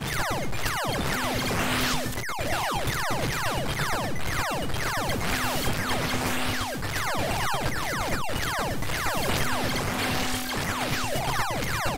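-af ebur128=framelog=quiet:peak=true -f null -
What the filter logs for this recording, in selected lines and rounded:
Integrated loudness:
  I:         -27.3 LUFS
  Threshold: -37.3 LUFS
Loudness range:
  LRA:         0.8 LU
  Threshold: -47.3 LUFS
  LRA low:   -27.7 LUFS
  LRA high:  -26.9 LUFS
True peak:
  Peak:      -12.7 dBFS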